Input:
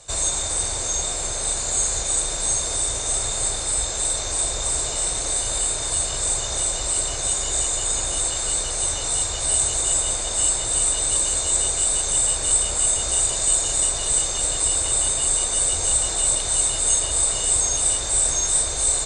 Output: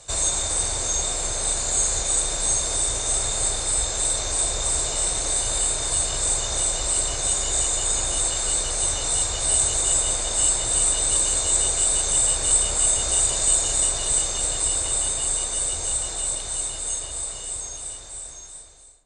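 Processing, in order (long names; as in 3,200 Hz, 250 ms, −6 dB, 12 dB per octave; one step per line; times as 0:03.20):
fade-out on the ending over 5.63 s
feedback echo with a low-pass in the loop 235 ms, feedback 60%, low-pass 2,600 Hz, level −17 dB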